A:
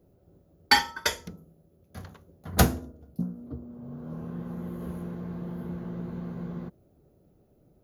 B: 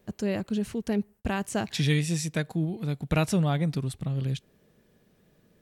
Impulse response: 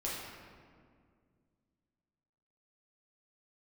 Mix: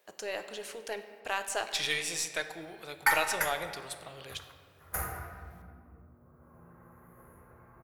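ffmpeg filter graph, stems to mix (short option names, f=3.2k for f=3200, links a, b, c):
-filter_complex "[0:a]firequalizer=gain_entry='entry(580,0);entry(1200,8);entry(2200,5);entry(3300,-15);entry(9500,11)':delay=0.05:min_phase=1,adelay=2350,volume=-10.5dB,asplit=2[a][b];[b]volume=-5.5dB[c];[1:a]highpass=470,volume=-0.5dB,asplit=3[d][e][f];[e]volume=-9dB[g];[f]apad=whole_len=453509[h];[a][h]sidechaingate=range=-33dB:threshold=-58dB:ratio=16:detection=peak[i];[2:a]atrim=start_sample=2205[j];[c][g]amix=inputs=2:normalize=0[k];[k][j]afir=irnorm=-1:irlink=0[l];[i][d][l]amix=inputs=3:normalize=0,equalizer=f=220:w=0.97:g=-15,aeval=exprs='0.188*(cos(1*acos(clip(val(0)/0.188,-1,1)))-cos(1*PI/2))+0.00531*(cos(8*acos(clip(val(0)/0.188,-1,1)))-cos(8*PI/2))':c=same"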